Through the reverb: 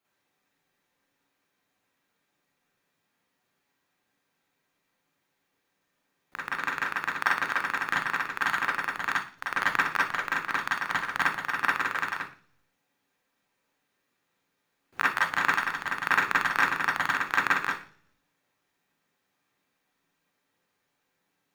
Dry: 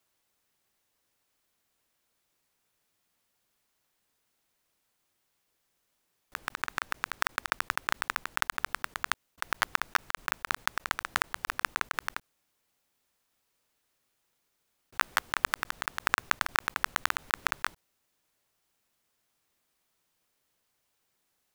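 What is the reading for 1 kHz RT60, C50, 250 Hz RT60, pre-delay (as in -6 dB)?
0.40 s, 2.5 dB, 0.65 s, 36 ms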